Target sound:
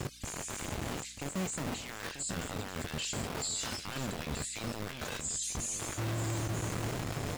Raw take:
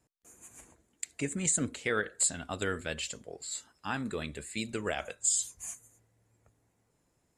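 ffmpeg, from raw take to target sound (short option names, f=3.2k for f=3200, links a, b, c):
-filter_complex "[0:a]aeval=exprs='val(0)+0.5*0.0282*sgn(val(0))':c=same,afftfilt=real='re*gte(hypot(re,im),0.00631)':imag='im*gte(hypot(re,im),0.00631)':win_size=1024:overlap=0.75,lowpass=7.3k,equalizer=f=120:w=0.8:g=10.5,areverse,acompressor=threshold=-34dB:ratio=6,areverse,alimiter=level_in=9dB:limit=-24dB:level=0:latency=1:release=21,volume=-9dB,acrossover=split=2100[a][b];[a]acrusher=bits=5:mix=0:aa=0.000001[c];[b]dynaudnorm=f=310:g=11:m=4.5dB[d];[c][d]amix=inputs=2:normalize=0,aeval=exprs='val(0)+0.001*(sin(2*PI*60*n/s)+sin(2*PI*2*60*n/s)/2+sin(2*PI*3*60*n/s)/3+sin(2*PI*4*60*n/s)/4+sin(2*PI*5*60*n/s)/5)':c=same,asplit=2[e][f];[f]adelay=21,volume=-13.5dB[g];[e][g]amix=inputs=2:normalize=0,aecho=1:1:938:0.316"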